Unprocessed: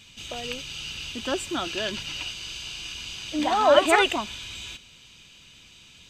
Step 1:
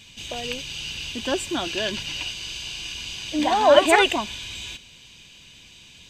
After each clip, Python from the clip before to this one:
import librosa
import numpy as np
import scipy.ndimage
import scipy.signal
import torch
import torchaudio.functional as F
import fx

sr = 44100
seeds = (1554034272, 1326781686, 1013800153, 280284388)

y = fx.notch(x, sr, hz=1300.0, q=6.2)
y = F.gain(torch.from_numpy(y), 3.0).numpy()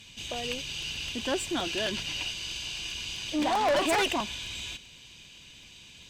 y = fx.tube_stage(x, sr, drive_db=20.0, bias=0.25)
y = fx.buffer_crackle(y, sr, first_s=0.69, period_s=0.13, block=128, kind='repeat')
y = F.gain(torch.from_numpy(y), -2.0).numpy()